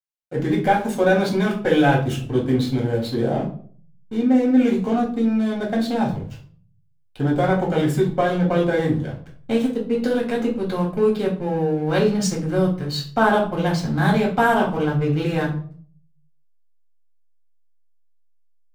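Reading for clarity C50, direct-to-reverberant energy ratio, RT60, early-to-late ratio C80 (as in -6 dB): 9.0 dB, -3.5 dB, 0.50 s, 13.5 dB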